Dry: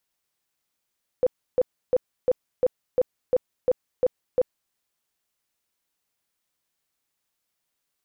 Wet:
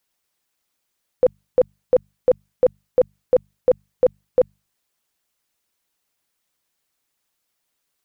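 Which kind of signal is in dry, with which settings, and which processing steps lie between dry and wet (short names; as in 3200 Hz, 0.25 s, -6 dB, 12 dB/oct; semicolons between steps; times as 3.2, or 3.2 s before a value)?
tone bursts 505 Hz, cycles 18, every 0.35 s, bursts 10, -15.5 dBFS
notches 50/100/150/200 Hz; harmonic-percussive split percussive +7 dB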